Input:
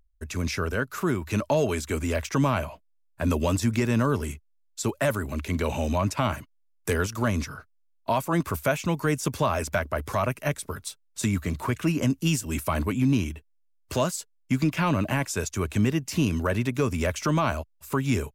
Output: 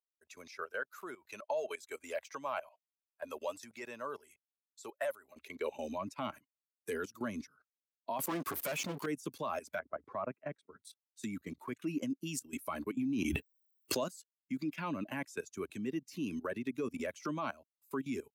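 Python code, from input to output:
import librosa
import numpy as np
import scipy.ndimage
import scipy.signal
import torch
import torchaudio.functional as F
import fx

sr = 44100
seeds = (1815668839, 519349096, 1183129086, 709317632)

y = fx.bin_expand(x, sr, power=1.5)
y = fx.leveller(y, sr, passes=5, at=(8.19, 9.06))
y = fx.lowpass(y, sr, hz=1500.0, slope=12, at=(9.79, 10.8))
y = fx.level_steps(y, sr, step_db=16)
y = fx.filter_sweep_highpass(y, sr, from_hz=610.0, to_hz=270.0, start_s=5.28, end_s=6.02, q=1.7)
y = fx.env_flatten(y, sr, amount_pct=100, at=(12.97, 14.04))
y = y * librosa.db_to_amplitude(-4.5)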